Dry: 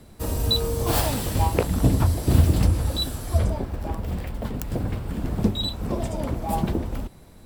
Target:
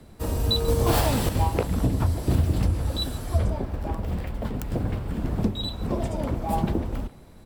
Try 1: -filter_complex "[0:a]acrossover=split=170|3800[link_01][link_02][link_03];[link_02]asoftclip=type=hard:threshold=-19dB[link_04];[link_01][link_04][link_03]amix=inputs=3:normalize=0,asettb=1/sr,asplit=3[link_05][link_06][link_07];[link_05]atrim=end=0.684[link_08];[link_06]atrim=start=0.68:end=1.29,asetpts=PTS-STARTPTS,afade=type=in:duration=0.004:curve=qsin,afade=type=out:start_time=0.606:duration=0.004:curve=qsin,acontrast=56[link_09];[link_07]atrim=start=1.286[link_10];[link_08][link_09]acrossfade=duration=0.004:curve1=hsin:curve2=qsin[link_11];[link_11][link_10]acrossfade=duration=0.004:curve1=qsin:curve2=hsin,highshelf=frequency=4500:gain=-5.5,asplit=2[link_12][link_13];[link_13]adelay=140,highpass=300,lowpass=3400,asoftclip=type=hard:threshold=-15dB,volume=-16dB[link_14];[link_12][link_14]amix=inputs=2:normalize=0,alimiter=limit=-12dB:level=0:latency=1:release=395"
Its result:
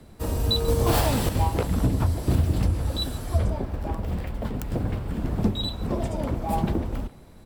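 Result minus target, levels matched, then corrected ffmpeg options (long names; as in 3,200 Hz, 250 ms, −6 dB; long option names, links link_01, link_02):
hard clipping: distortion +12 dB
-filter_complex "[0:a]acrossover=split=170|3800[link_01][link_02][link_03];[link_02]asoftclip=type=hard:threshold=-12dB[link_04];[link_01][link_04][link_03]amix=inputs=3:normalize=0,asettb=1/sr,asplit=3[link_05][link_06][link_07];[link_05]atrim=end=0.684[link_08];[link_06]atrim=start=0.68:end=1.29,asetpts=PTS-STARTPTS,afade=type=in:duration=0.004:curve=qsin,afade=type=out:start_time=0.606:duration=0.004:curve=qsin,acontrast=56[link_09];[link_07]atrim=start=1.286[link_10];[link_08][link_09]acrossfade=duration=0.004:curve1=hsin:curve2=qsin[link_11];[link_11][link_10]acrossfade=duration=0.004:curve1=qsin:curve2=hsin,highshelf=frequency=4500:gain=-5.5,asplit=2[link_12][link_13];[link_13]adelay=140,highpass=300,lowpass=3400,asoftclip=type=hard:threshold=-15dB,volume=-16dB[link_14];[link_12][link_14]amix=inputs=2:normalize=0,alimiter=limit=-12dB:level=0:latency=1:release=395"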